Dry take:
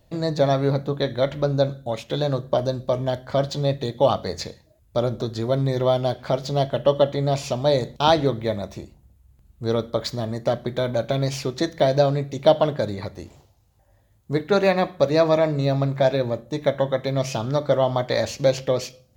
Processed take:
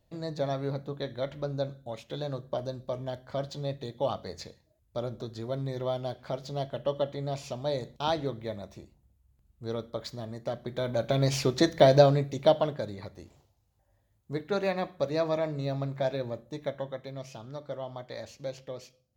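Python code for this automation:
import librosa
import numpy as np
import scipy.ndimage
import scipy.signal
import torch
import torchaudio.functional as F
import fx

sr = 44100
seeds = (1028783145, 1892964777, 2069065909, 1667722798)

y = fx.gain(x, sr, db=fx.line((10.53, -11.5), (11.4, 0.0), (11.97, 0.0), (12.86, -10.5), (16.45, -10.5), (17.3, -18.0)))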